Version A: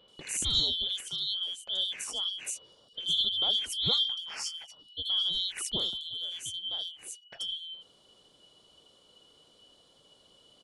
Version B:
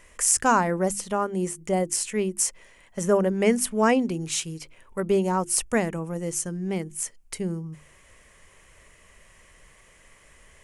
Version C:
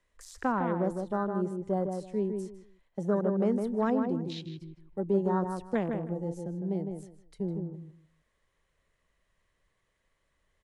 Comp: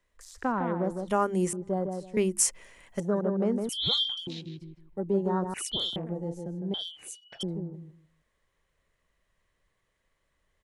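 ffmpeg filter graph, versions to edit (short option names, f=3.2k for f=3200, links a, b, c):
-filter_complex "[1:a]asplit=2[a][b];[0:a]asplit=3[c][d][e];[2:a]asplit=6[f][g][h][i][j][k];[f]atrim=end=1.082[l];[a]atrim=start=1.078:end=1.532[m];[g]atrim=start=1.528:end=2.172[n];[b]atrim=start=2.168:end=3.002[o];[h]atrim=start=2.998:end=3.692[p];[c]atrim=start=3.688:end=4.272[q];[i]atrim=start=4.268:end=5.542[r];[d]atrim=start=5.538:end=5.962[s];[j]atrim=start=5.958:end=6.742[t];[e]atrim=start=6.738:end=7.432[u];[k]atrim=start=7.428[v];[l][m]acrossfade=d=0.004:c1=hsin:c2=hsin[w];[w][n]acrossfade=d=0.004:c1=hsin:c2=hsin[x];[x][o]acrossfade=d=0.004:c1=hsin:c2=hsin[y];[y][p]acrossfade=d=0.004:c1=hsin:c2=hsin[z];[z][q]acrossfade=d=0.004:c1=hsin:c2=hsin[aa];[aa][r]acrossfade=d=0.004:c1=hsin:c2=hsin[ab];[ab][s]acrossfade=d=0.004:c1=hsin:c2=hsin[ac];[ac][t]acrossfade=d=0.004:c1=hsin:c2=hsin[ad];[ad][u]acrossfade=d=0.004:c1=hsin:c2=hsin[ae];[ae][v]acrossfade=d=0.004:c1=hsin:c2=hsin"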